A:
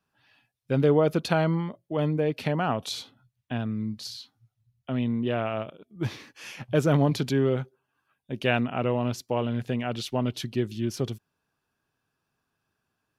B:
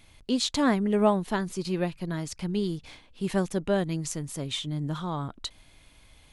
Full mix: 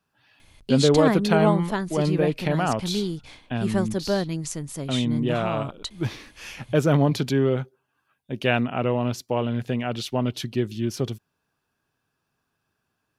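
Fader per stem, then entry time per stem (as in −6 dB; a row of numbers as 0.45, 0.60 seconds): +2.5, +1.5 decibels; 0.00, 0.40 seconds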